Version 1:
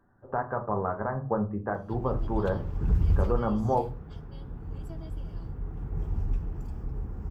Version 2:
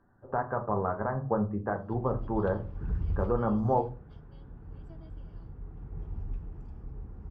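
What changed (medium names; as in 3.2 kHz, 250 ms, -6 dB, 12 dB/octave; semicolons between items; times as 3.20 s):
background -7.5 dB; master: add distance through air 130 m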